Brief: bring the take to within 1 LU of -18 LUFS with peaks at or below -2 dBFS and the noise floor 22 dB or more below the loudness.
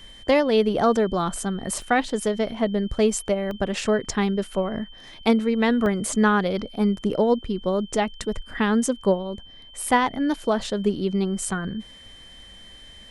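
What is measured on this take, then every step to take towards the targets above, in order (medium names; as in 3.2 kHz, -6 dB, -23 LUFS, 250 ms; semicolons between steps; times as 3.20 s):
dropouts 3; longest dropout 1.1 ms; steady tone 3.1 kHz; tone level -45 dBFS; loudness -23.5 LUFS; peak level -6.5 dBFS; loudness target -18.0 LUFS
-> interpolate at 1.82/3.51/5.86 s, 1.1 ms; band-stop 3.1 kHz, Q 30; trim +5.5 dB; peak limiter -2 dBFS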